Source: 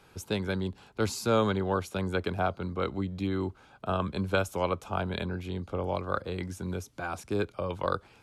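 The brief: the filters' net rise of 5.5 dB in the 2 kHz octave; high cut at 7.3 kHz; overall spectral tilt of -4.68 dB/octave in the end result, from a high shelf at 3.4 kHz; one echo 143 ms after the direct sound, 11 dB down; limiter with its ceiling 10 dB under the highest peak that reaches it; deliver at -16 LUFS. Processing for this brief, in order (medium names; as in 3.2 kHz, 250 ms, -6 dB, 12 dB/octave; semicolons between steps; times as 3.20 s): low-pass 7.3 kHz; peaking EQ 2 kHz +7.5 dB; treble shelf 3.4 kHz +3 dB; peak limiter -20 dBFS; delay 143 ms -11 dB; trim +16.5 dB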